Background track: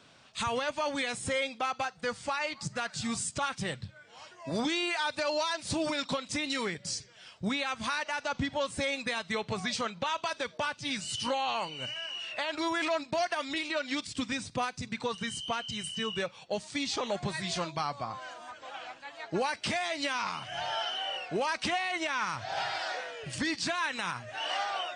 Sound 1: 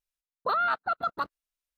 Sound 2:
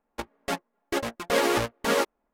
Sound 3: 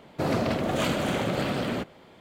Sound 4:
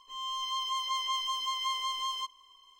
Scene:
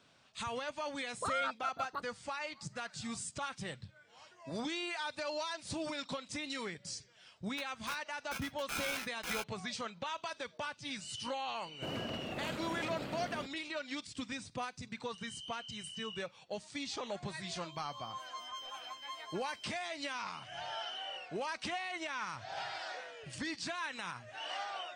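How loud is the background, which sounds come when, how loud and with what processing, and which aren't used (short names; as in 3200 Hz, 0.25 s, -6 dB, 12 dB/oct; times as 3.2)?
background track -8 dB
0.76 add 1 -10 dB
7.39 add 2 -16.5 dB + polarity switched at an audio rate 1900 Hz
11.63 add 3 -15 dB
17.43 add 4 -9.5 dB + per-bin expansion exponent 3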